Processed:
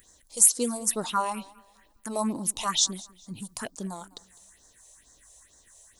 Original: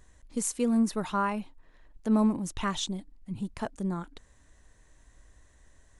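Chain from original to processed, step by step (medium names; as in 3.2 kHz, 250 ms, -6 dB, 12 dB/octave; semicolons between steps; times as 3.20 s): phase shifter stages 4, 2.2 Hz, lowest notch 240–2600 Hz; RIAA curve recording; modulated delay 203 ms, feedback 33%, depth 55 cents, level -22 dB; trim +5 dB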